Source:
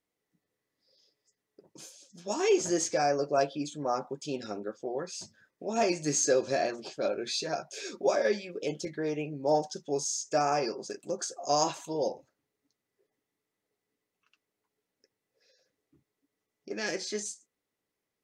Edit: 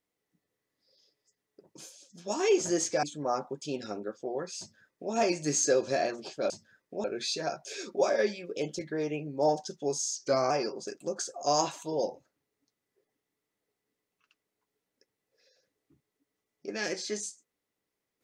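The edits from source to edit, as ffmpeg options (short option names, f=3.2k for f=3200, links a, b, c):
-filter_complex "[0:a]asplit=6[a][b][c][d][e][f];[a]atrim=end=3.032[g];[b]atrim=start=3.628:end=7.102[h];[c]atrim=start=5.188:end=5.732[i];[d]atrim=start=7.098:end=10.224[j];[e]atrim=start=10.22:end=10.53,asetpts=PTS-STARTPTS,asetrate=39690,aresample=44100[k];[f]atrim=start=10.526[l];[g][h]acrossfade=d=0.004:c1=hsin:c2=hsin[m];[m][i]acrossfade=d=0.004:c1=hsin:c2=hsin[n];[n][j]acrossfade=d=0.004:c1=hsin:c2=hsin[o];[o][k]acrossfade=d=0.004:c1=hsin:c2=hsin[p];[p][l]acrossfade=d=0.004:c1=hsin:c2=hsin"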